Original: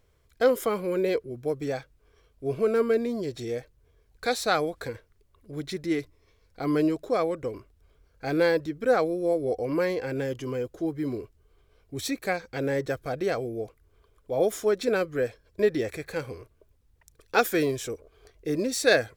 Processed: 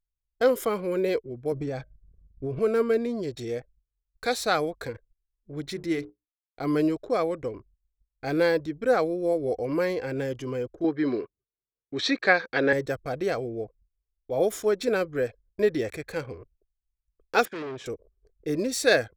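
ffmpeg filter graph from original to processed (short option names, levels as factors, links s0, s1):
-filter_complex "[0:a]asettb=1/sr,asplit=3[s0][s1][s2];[s0]atrim=end=1.524[s3];[s1]atrim=start=1.52:end=2.59,asetpts=PTS-STARTPTS,afade=t=in:d=0.004:c=qsin,afade=t=out:st=1.066:d=0.004:c=qsin,lowshelf=f=330:g=9.5,bandreject=f=310.7:t=h:w=4,bandreject=f=621.4:t=h:w=4,bandreject=f=932.1:t=h:w=4,bandreject=f=1242.8:t=h:w=4,bandreject=f=1553.5:t=h:w=4,bandreject=f=1864.2:t=h:w=4,bandreject=f=2174.9:t=h:w=4,bandreject=f=2485.6:t=h:w=4,bandreject=f=2796.3:t=h:w=4,bandreject=f=3107:t=h:w=4,bandreject=f=3417.7:t=h:w=4,bandreject=f=3728.4:t=h:w=4,bandreject=f=4039.1:t=h:w=4,bandreject=f=4349.8:t=h:w=4,bandreject=f=4660.5:t=h:w=4,bandreject=f=4971.2:t=h:w=4,bandreject=f=5281.9:t=h:w=4,bandreject=f=5592.6:t=h:w=4,bandreject=f=5903.3:t=h:w=4,bandreject=f=6214:t=h:w=4,bandreject=f=6524.7:t=h:w=4,bandreject=f=6835.4:t=h:w=4,bandreject=f=7146.1:t=h:w=4,bandreject=f=7456.8:t=h:w=4,bandreject=f=7767.5:t=h:w=4,bandreject=f=8078.2:t=h:w=4,bandreject=f=8388.9:t=h:w=4,bandreject=f=8699.6:t=h:w=4,bandreject=f=9010.3:t=h:w=4,bandreject=f=9321:t=h:w=4,acompressor=threshold=0.0447:ratio=5:attack=3.2:release=140:knee=1:detection=peak[s4];[s2]atrim=start=2.586[s5];[s3][s4]acrossfade=d=0.004:c1=hsin:c2=qsin[s6];[s6][s5]acrossfade=d=0.004:c1=qsin:c2=hsin,asettb=1/sr,asplit=3[s7][s8][s9];[s7]atrim=end=5.644[s10];[s8]atrim=start=5.64:end=6.62,asetpts=PTS-STARTPTS,afade=t=in:d=0.004:c=qsin,afade=t=out:st=0.976:d=0.004:c=qsin,aeval=exprs='val(0)*gte(abs(val(0)),0.00237)':c=same,bandreject=f=60:t=h:w=6,bandreject=f=120:t=h:w=6,bandreject=f=180:t=h:w=6,bandreject=f=240:t=h:w=6,bandreject=f=300:t=h:w=6,bandreject=f=360:t=h:w=6,bandreject=f=420:t=h:w=6,bandreject=f=480:t=h:w=6[s11];[s9]atrim=start=6.616[s12];[s10][s11]acrossfade=d=0.004:c1=hsin:c2=qsin[s13];[s13][s12]acrossfade=d=0.004:c1=qsin:c2=hsin,asettb=1/sr,asplit=3[s14][s15][s16];[s14]atrim=end=10.844[s17];[s15]atrim=start=10.84:end=12.73,asetpts=PTS-STARTPTS,afade=t=in:d=0.004:c=qsin,afade=t=out:st=1.886:d=0.004:c=qsin,acontrast=42,highpass=230,equalizer=f=1200:t=q:w=4:g=4,equalizer=f=1700:t=q:w=4:g=8,equalizer=f=3800:t=q:w=4:g=5,lowpass=f=5000:w=0.5412,lowpass=f=5000:w=1.3066[s18];[s16]atrim=start=12.726[s19];[s17][s18]acrossfade=d=0.004:c1=hsin:c2=qsin[s20];[s20][s19]acrossfade=d=0.004:c1=qsin:c2=hsin,asettb=1/sr,asplit=3[s21][s22][s23];[s21]atrim=end=17.454[s24];[s22]atrim=start=17.45:end=17.86,asetpts=PTS-STARTPTS,afade=t=in:d=0.004:c=qsin,afade=t=out:st=0.406:d=0.004:c=qsin,volume=42.2,asoftclip=hard,volume=0.0237,highpass=150,lowpass=3600[s25];[s23]atrim=start=17.856[s26];[s24][s25]acrossfade=d=0.004:c1=hsin:c2=qsin[s27];[s27][s26]acrossfade=d=0.004:c1=qsin:c2=hsin,agate=range=0.2:threshold=0.00158:ratio=16:detection=peak,anlmdn=0.0398"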